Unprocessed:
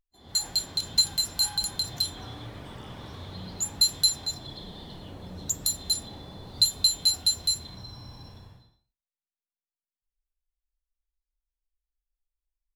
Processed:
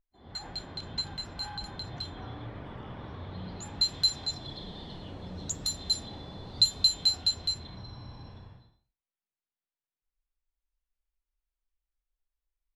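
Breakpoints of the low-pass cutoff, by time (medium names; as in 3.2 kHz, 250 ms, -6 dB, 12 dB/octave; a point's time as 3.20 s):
3.24 s 2.2 kHz
4.35 s 5.5 kHz
6.86 s 5.5 kHz
7.70 s 3.2 kHz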